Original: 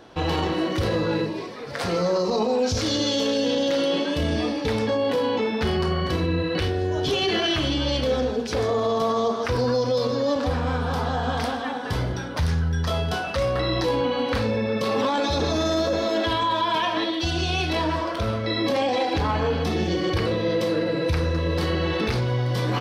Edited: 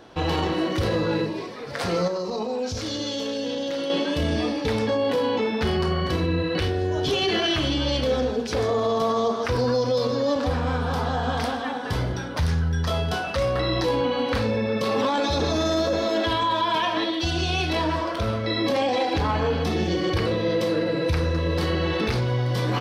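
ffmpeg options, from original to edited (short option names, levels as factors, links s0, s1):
-filter_complex "[0:a]asplit=3[s0][s1][s2];[s0]atrim=end=2.082[s3];[s1]atrim=start=2.078:end=3.902,asetpts=PTS-STARTPTS,volume=0.531[s4];[s2]atrim=start=3.898[s5];[s3][s4]acrossfade=d=0.004:c1=hsin:c2=hsin[s6];[s6][s5]acrossfade=d=0.004:c1=hsin:c2=hsin"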